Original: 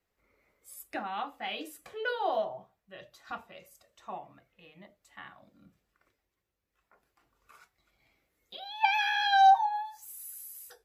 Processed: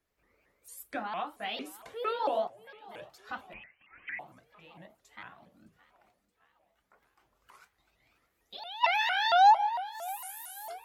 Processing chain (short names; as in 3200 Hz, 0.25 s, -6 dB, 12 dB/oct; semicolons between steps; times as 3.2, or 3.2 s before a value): 2.47–2.95 compressor, threshold -52 dBFS, peak gain reduction 13 dB; thinning echo 0.618 s, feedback 60%, high-pass 190 Hz, level -19.5 dB; 3.53–4.19 inverted band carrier 2900 Hz; shaped vibrato saw up 4.4 Hz, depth 250 cents